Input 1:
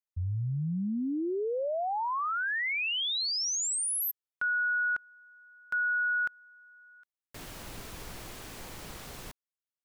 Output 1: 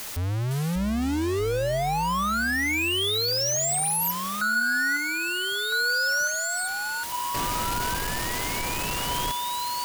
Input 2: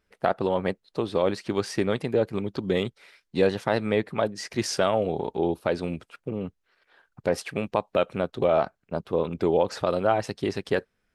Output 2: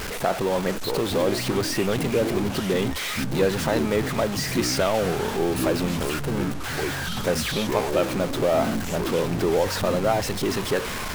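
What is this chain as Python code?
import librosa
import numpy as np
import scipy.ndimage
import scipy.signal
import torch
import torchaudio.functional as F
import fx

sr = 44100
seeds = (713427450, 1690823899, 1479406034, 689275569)

y = x + 0.5 * 10.0 ** (-23.0 / 20.0) * np.sign(x)
y = fx.echo_pitch(y, sr, ms=510, semitones=-7, count=2, db_per_echo=-6.0)
y = y * librosa.db_to_amplitude(-2.0)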